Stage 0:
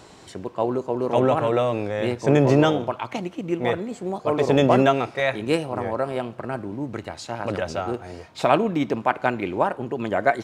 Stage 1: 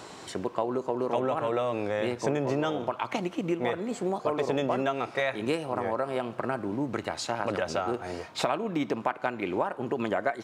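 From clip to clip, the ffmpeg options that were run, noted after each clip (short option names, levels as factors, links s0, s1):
-af "highpass=f=180:p=1,equalizer=f=1200:t=o:w=0.77:g=2.5,acompressor=threshold=0.0398:ratio=6,volume=1.41"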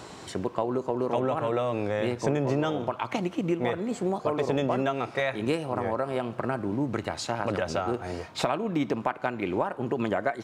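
-af "lowshelf=f=160:g=8.5"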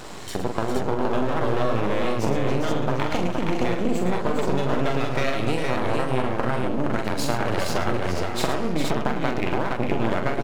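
-af "acompressor=threshold=0.0447:ratio=6,aeval=exprs='max(val(0),0)':c=same,aecho=1:1:44|109|405|468:0.531|0.335|0.422|0.668,volume=2.51"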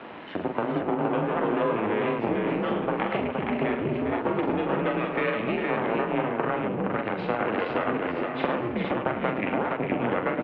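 -af "highpass=f=290:t=q:w=0.5412,highpass=f=290:t=q:w=1.307,lowpass=f=3000:t=q:w=0.5176,lowpass=f=3000:t=q:w=0.7071,lowpass=f=3000:t=q:w=1.932,afreqshift=-100"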